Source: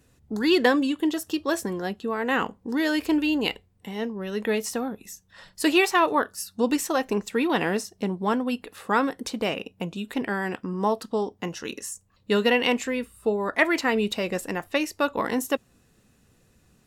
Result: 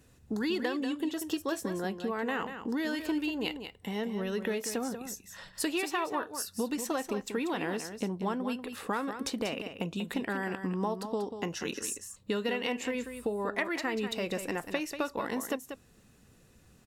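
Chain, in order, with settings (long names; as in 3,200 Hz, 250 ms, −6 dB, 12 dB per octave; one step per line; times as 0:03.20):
downward compressor 5 to 1, threshold −30 dBFS, peak gain reduction 14.5 dB
on a send: single-tap delay 189 ms −9 dB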